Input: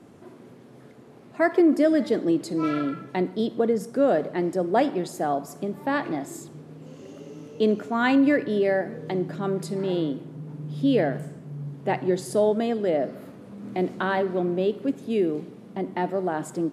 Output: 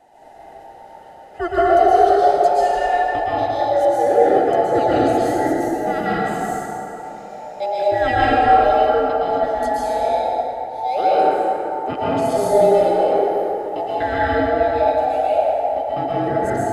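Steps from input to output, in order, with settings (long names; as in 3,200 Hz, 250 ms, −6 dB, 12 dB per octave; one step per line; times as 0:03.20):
frequency inversion band by band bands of 1,000 Hz
dense smooth reverb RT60 3.1 s, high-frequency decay 0.5×, pre-delay 105 ms, DRR −9 dB
level −3 dB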